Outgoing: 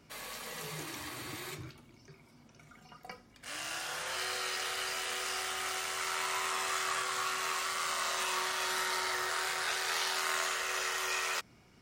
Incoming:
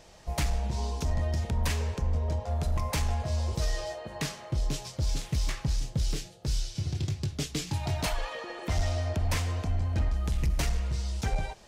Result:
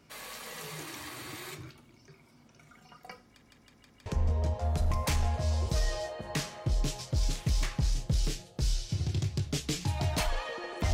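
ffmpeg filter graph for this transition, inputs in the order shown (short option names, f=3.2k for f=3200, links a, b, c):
-filter_complex "[0:a]apad=whole_dur=10.93,atrim=end=10.93,asplit=5[a][b][c][d][e];[a]atrim=end=3.422[f];[b]atrim=start=3.258:end=3.422[g];[c]atrim=start=3.258:end=3.422[h];[d]atrim=start=3.258:end=3.422[i];[e]atrim=start=3.258:end=3.422[j];[1:a]atrim=start=1.918:end=8.79[k];[f][g]acrossfade=d=0.004:c1=hsin:c2=hsin[l];[l][h]acrossfade=d=0.004:c1=hsin:c2=hsin[m];[m][i]acrossfade=d=0.004:c1=hsin:c2=hsin[n];[n][j]acrossfade=d=0.004:c1=hsin:c2=hsin[o];[o][k]acrossfade=d=0.004:c1=hsin:c2=hsin"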